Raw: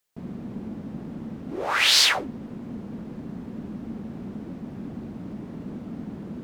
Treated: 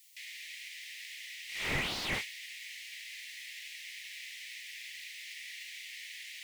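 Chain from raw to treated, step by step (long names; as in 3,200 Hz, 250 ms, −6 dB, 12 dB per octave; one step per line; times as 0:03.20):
Butterworth high-pass 1,900 Hz 96 dB per octave
compressor whose output falls as the input rises −31 dBFS, ratio −1
slew-rate limiting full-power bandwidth 20 Hz
level +8.5 dB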